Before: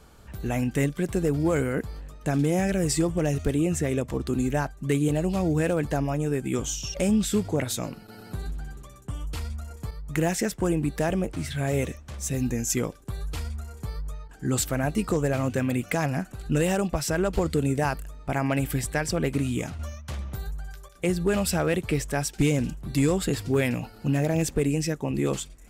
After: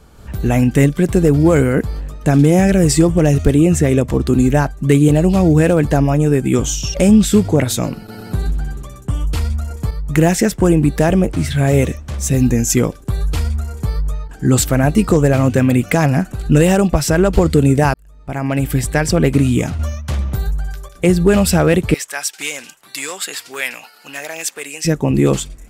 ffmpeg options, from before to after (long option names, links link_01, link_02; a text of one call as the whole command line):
ffmpeg -i in.wav -filter_complex "[0:a]asettb=1/sr,asplit=3[link_01][link_02][link_03];[link_01]atrim=end=21.944[link_04];[link_02]atrim=start=21.94:end=24.85,asetpts=PTS-STARTPTS,afade=type=in:duration=0.004:curve=qsin,afade=type=out:start_time=2.906:duration=0.004:curve=qsin,highpass=1300[link_05];[link_03]atrim=start=24.846[link_06];[link_04][link_05]acrossfade=duration=0.004:curve1=hsin:curve2=qsin[link_07];[link_07][link_06]acrossfade=duration=0.004:curve1=qsin:curve2=hsin,asplit=2[link_08][link_09];[link_08]atrim=end=17.94,asetpts=PTS-STARTPTS,afade=type=out:start_time=17.936:duration=0.004:curve=hsin[link_10];[link_09]atrim=start=17.94,asetpts=PTS-STARTPTS,afade=type=in:duration=1.13[link_11];[link_10][link_11]concat=n=2:v=0:a=1,lowshelf=frequency=420:gain=4.5,dynaudnorm=framelen=130:gausssize=3:maxgain=7dB,volume=3dB" out.wav